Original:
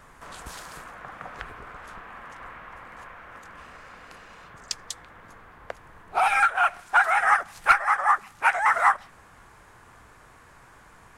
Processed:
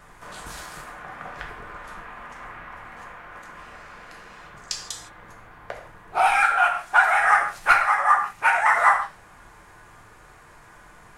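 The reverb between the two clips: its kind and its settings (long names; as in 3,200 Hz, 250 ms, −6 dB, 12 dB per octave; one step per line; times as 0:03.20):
reverb whose tail is shaped and stops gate 190 ms falling, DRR 0.5 dB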